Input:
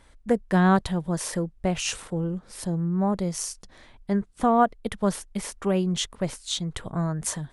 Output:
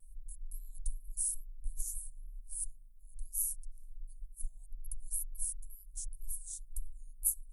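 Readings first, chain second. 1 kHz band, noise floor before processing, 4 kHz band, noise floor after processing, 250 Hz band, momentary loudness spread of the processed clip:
under -40 dB, -55 dBFS, under -30 dB, -53 dBFS, under -40 dB, 19 LU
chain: inverse Chebyshev band-stop 180–2600 Hz, stop band 80 dB; wow and flutter 86 cents; trim +10.5 dB

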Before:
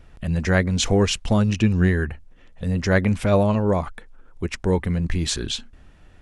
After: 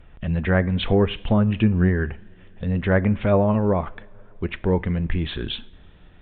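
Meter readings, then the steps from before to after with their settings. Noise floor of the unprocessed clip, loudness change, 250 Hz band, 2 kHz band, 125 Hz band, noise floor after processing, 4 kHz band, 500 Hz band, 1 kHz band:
-51 dBFS, -0.5 dB, 0.0 dB, -2.0 dB, -0.5 dB, -48 dBFS, -4.5 dB, 0.0 dB, -0.5 dB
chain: resampled via 8 kHz; two-slope reverb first 0.46 s, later 4.3 s, from -21 dB, DRR 16.5 dB; low-pass that closes with the level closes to 1.6 kHz, closed at -14 dBFS

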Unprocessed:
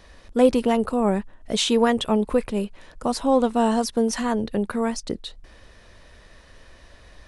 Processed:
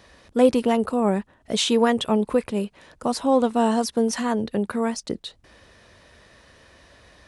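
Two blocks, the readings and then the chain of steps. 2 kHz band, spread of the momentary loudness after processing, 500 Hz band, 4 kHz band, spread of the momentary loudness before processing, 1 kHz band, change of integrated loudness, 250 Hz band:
0.0 dB, 11 LU, 0.0 dB, 0.0 dB, 11 LU, 0.0 dB, 0.0 dB, 0.0 dB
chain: high-pass 79 Hz 12 dB/octave

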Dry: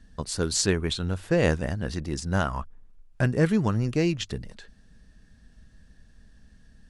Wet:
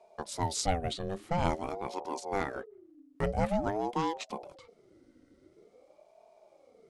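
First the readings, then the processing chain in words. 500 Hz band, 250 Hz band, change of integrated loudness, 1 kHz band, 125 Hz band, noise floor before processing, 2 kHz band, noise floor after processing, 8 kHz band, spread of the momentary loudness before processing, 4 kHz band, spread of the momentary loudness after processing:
-6.0 dB, -10.0 dB, -7.5 dB, +3.0 dB, -11.5 dB, -56 dBFS, -9.5 dB, -64 dBFS, -9.0 dB, 10 LU, -8.5 dB, 11 LU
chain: small resonant body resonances 270/400/830 Hz, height 10 dB, ringing for 90 ms; ring modulator with a swept carrier 470 Hz, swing 40%, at 0.48 Hz; trim -6 dB

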